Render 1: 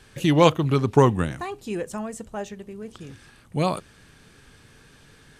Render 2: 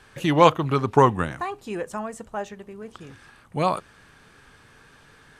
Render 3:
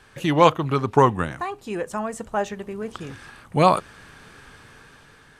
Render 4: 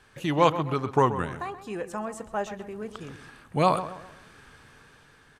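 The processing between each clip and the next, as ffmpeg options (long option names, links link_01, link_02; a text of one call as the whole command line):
ffmpeg -i in.wav -af "equalizer=frequency=1100:width=0.63:gain=9,volume=-4dB" out.wav
ffmpeg -i in.wav -af "dynaudnorm=framelen=390:gausssize=5:maxgain=9dB" out.wav
ffmpeg -i in.wav -filter_complex "[0:a]asplit=2[link_01][link_02];[link_02]adelay=129,lowpass=frequency=2900:poles=1,volume=-12dB,asplit=2[link_03][link_04];[link_04]adelay=129,lowpass=frequency=2900:poles=1,volume=0.4,asplit=2[link_05][link_06];[link_06]adelay=129,lowpass=frequency=2900:poles=1,volume=0.4,asplit=2[link_07][link_08];[link_08]adelay=129,lowpass=frequency=2900:poles=1,volume=0.4[link_09];[link_01][link_03][link_05][link_07][link_09]amix=inputs=5:normalize=0,volume=-5.5dB" out.wav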